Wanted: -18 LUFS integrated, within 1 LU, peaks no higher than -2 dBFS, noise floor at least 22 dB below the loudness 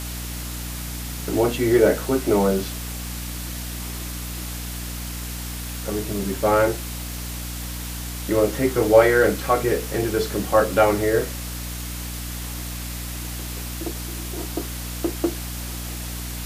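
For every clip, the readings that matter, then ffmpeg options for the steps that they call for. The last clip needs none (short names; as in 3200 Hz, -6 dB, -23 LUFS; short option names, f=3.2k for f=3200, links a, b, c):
hum 60 Hz; harmonics up to 300 Hz; hum level -30 dBFS; noise floor -31 dBFS; noise floor target -46 dBFS; loudness -24.0 LUFS; peak -1.5 dBFS; loudness target -18.0 LUFS
-> -af "bandreject=f=60:t=h:w=4,bandreject=f=120:t=h:w=4,bandreject=f=180:t=h:w=4,bandreject=f=240:t=h:w=4,bandreject=f=300:t=h:w=4"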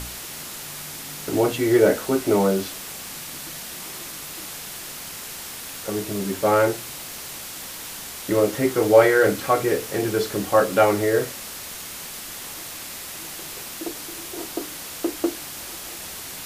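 hum none; noise floor -36 dBFS; noise floor target -47 dBFS
-> -af "afftdn=nr=11:nf=-36"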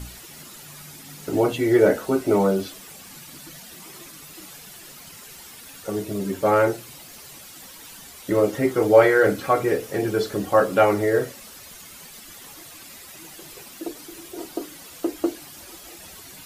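noise floor -43 dBFS; noise floor target -44 dBFS
-> -af "afftdn=nr=6:nf=-43"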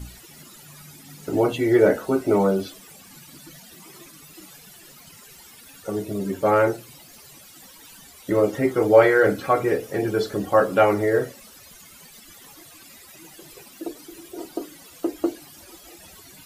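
noise floor -48 dBFS; loudness -21.5 LUFS; peak -2.0 dBFS; loudness target -18.0 LUFS
-> -af "volume=3.5dB,alimiter=limit=-2dB:level=0:latency=1"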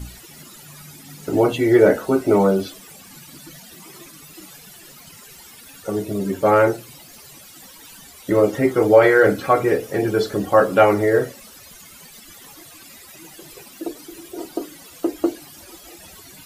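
loudness -18.0 LUFS; peak -2.0 dBFS; noise floor -44 dBFS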